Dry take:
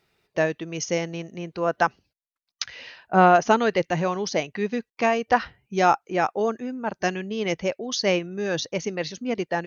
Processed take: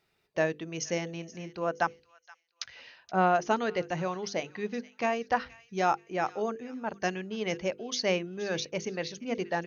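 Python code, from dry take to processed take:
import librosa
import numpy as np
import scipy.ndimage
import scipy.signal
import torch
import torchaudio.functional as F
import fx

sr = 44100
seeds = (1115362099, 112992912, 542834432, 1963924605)

y = fx.hum_notches(x, sr, base_hz=50, count=10)
y = fx.rider(y, sr, range_db=3, speed_s=2.0)
y = fx.echo_wet_highpass(y, sr, ms=474, feedback_pct=30, hz=1700.0, wet_db=-17)
y = y * 10.0 ** (-7.5 / 20.0)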